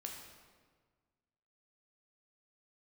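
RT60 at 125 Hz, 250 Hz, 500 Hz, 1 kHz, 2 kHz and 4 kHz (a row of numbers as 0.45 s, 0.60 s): 2.0 s, 1.8 s, 1.6 s, 1.5 s, 1.3 s, 1.1 s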